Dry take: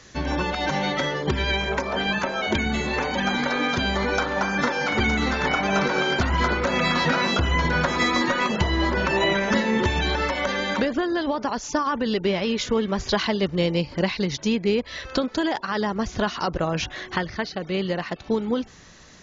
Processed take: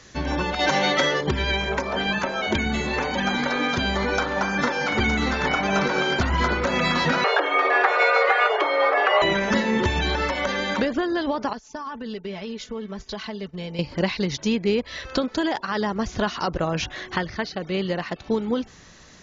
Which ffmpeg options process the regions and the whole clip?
-filter_complex "[0:a]asettb=1/sr,asplit=3[a][b][c];[a]atrim=end=0.594[d];[b]atrim=start=0.59:end=1.21,asetpts=PTS-STARTPTS,afade=t=in:d=0.004:c=qsin,afade=t=out:st=0.616:d=0.004:c=qsin,bass=f=250:g=-9,treble=f=4k:g=2,acontrast=31,bandreject=f=870:w=20[e];[c]atrim=start=1.206[f];[d][e]acrossfade=d=0.004:c1=hsin:c2=qsin[g];[g][f]acrossfade=d=0.004:c1=qsin:c2=hsin,asettb=1/sr,asplit=3[h][i][j];[h]atrim=end=7.244[k];[i]atrim=start=7.24:end=9.22,asetpts=PTS-STARTPTS,afade=t=in:d=0.004:c=qsin,afade=t=out:st=1.976:d=0.004:c=qsin,acontrast=38,highpass=250,lowpass=2.1k,afreqshift=220[l];[j]atrim=start=9.216[m];[k][l]acrossfade=d=0.004:c1=hsin:c2=qsin[n];[n][m]acrossfade=d=0.004:c1=qsin:c2=hsin,asettb=1/sr,asplit=3[o][p][q];[o]atrim=end=11.534[r];[p]atrim=start=11.53:end=13.79,asetpts=PTS-STARTPTS,afade=t=in:d=0.004:c=qsin,afade=t=out:st=2.256:d=0.004:c=qsin,agate=range=-33dB:threshold=-25dB:ratio=3:release=100:detection=peak,aecho=1:1:4.6:0.57,atrim=end_sample=99666,acompressor=threshold=-35dB:ratio=2.5:attack=3.2:release=140:knee=1:detection=peak[s];[q]atrim=start=13.786[t];[r][s]acrossfade=d=0.004:c1=hsin:c2=qsin[u];[u][t]acrossfade=d=0.004:c1=qsin:c2=hsin"

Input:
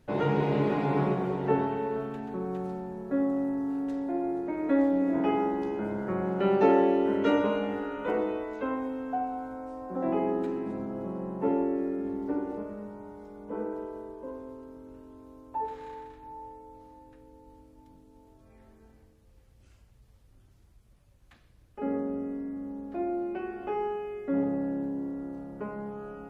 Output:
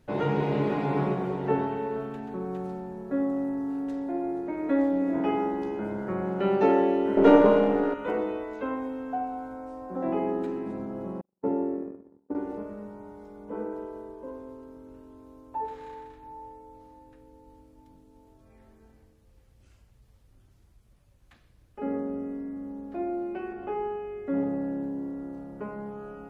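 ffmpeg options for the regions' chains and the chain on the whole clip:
-filter_complex "[0:a]asettb=1/sr,asplit=3[a][b][c];[a]atrim=end=7.174[d];[b]atrim=start=7.17:end=7.94,asetpts=PTS-STARTPTS,afade=t=in:d=0.004:c=qsin,afade=t=out:st=0.766:d=0.004:c=qsin,aeval=exprs='if(lt(val(0),0),0.447*val(0),val(0))':c=same,equalizer=f=460:w=0.37:g=12.5[e];[c]atrim=start=7.936[f];[d][e]acrossfade=d=0.004:c1=hsin:c2=qsin[g];[g][f]acrossfade=d=0.004:c1=qsin:c2=hsin,asettb=1/sr,asplit=3[h][i][j];[h]atrim=end=11.214[k];[i]atrim=start=11.21:end=12.35,asetpts=PTS-STARTPTS,afade=t=in:d=0.004:c=qsin,afade=t=out:st=1.136:d=0.004:c=qsin,agate=range=-52dB:threshold=-30dB:ratio=16:release=100:detection=peak,highpass=59,equalizer=f=3.2k:t=o:w=2.2:g=-11[l];[j]atrim=start=12.346[m];[k][l]acrossfade=d=0.004:c1=hsin:c2=qsin[n];[n][m]acrossfade=d=0.004:c1=qsin:c2=hsin,asettb=1/sr,asplit=3[o][p][q];[o]atrim=end=23.524[r];[p]atrim=start=23.52:end=24.27,asetpts=PTS-STARTPTS,afade=t=in:d=0.004:c=qsin,afade=t=out:st=0.746:d=0.004:c=qsin,highshelf=f=2.9k:g=-7.5,acompressor=mode=upward:threshold=-35dB:ratio=2.5:attack=3.2:release=140:knee=2.83:detection=peak,aeval=exprs='val(0)+0.00126*(sin(2*PI*50*n/s)+sin(2*PI*2*50*n/s)/2+sin(2*PI*3*50*n/s)/3+sin(2*PI*4*50*n/s)/4+sin(2*PI*5*50*n/s)/5)':c=same[s];[q]atrim=start=24.266[t];[r][s]acrossfade=d=0.004:c1=hsin:c2=qsin[u];[u][t]acrossfade=d=0.004:c1=qsin:c2=hsin"

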